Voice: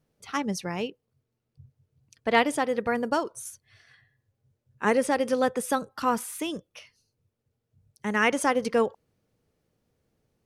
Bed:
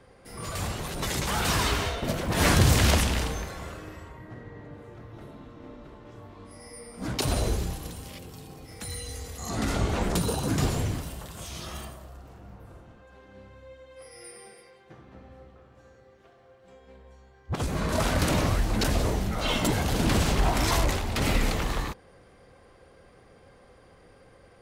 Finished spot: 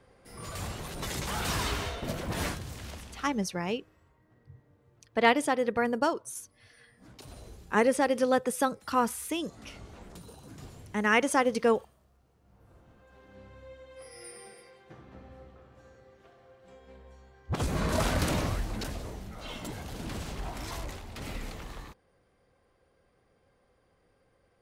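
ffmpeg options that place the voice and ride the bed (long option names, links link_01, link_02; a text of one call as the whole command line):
ffmpeg -i stem1.wav -i stem2.wav -filter_complex "[0:a]adelay=2900,volume=-1dB[link_01];[1:a]volume=15dB,afade=type=out:start_time=2.3:duration=0.29:silence=0.158489,afade=type=in:start_time=12.41:duration=1.21:silence=0.0944061,afade=type=out:start_time=17.86:duration=1.14:silence=0.223872[link_02];[link_01][link_02]amix=inputs=2:normalize=0" out.wav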